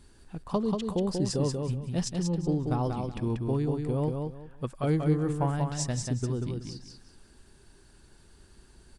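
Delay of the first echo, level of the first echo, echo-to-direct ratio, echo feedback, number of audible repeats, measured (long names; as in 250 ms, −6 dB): 187 ms, −4.5 dB, −4.0 dB, 24%, 3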